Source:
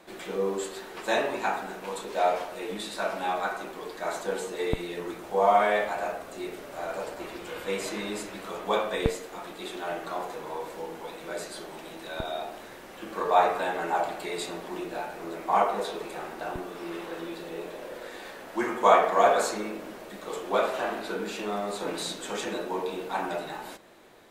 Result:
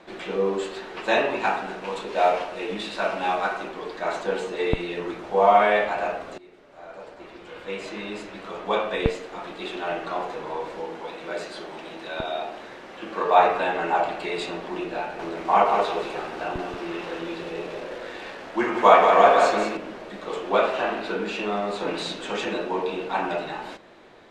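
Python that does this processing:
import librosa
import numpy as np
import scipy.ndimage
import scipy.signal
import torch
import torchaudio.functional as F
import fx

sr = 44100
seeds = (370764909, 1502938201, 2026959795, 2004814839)

y = fx.cvsd(x, sr, bps=64000, at=(1.4, 3.69))
y = fx.low_shelf(y, sr, hz=110.0, db=-9.0, at=(10.8, 13.37))
y = fx.echo_crushed(y, sr, ms=181, feedback_pct=35, bits=7, wet_db=-5, at=(15.01, 19.77))
y = fx.edit(y, sr, fx.fade_in_from(start_s=6.38, length_s=3.2, floor_db=-20.0), tone=tone)
y = scipy.signal.sosfilt(scipy.signal.butter(2, 4500.0, 'lowpass', fs=sr, output='sos'), y)
y = fx.dynamic_eq(y, sr, hz=2700.0, q=5.5, threshold_db=-56.0, ratio=4.0, max_db=6)
y = y * librosa.db_to_amplitude(4.5)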